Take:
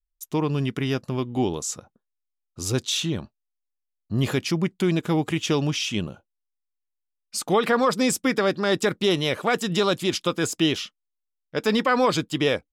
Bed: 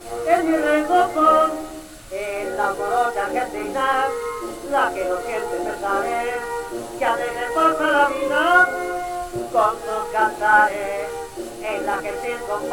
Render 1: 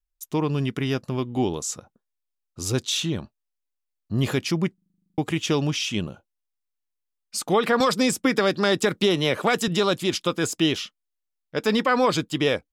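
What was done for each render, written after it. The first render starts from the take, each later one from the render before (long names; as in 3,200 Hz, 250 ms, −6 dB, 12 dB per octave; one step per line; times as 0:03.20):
0:04.74: stutter in place 0.04 s, 11 plays
0:07.80–0:09.68: multiband upward and downward compressor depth 100%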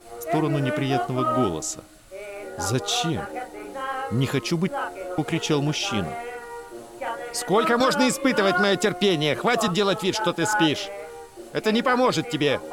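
mix in bed −10 dB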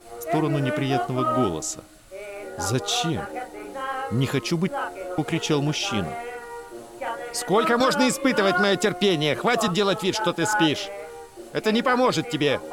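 no processing that can be heard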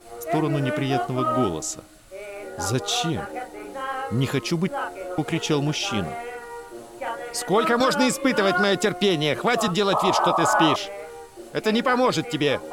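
0:09.92–0:10.76: sound drawn into the spectrogram noise 550–1,300 Hz −22 dBFS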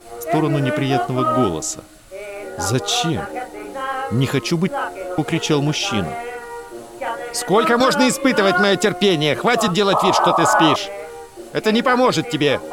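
level +5 dB
brickwall limiter −3 dBFS, peak gain reduction 1.5 dB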